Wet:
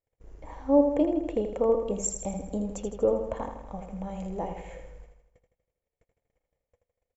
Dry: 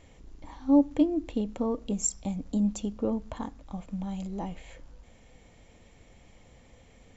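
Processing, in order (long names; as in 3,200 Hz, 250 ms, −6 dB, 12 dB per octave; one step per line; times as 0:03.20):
noise gate −49 dBFS, range −39 dB
octave-band graphic EQ 250/500/2,000/4,000 Hz −8/+11/+3/−10 dB
repeating echo 80 ms, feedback 53%, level −7 dB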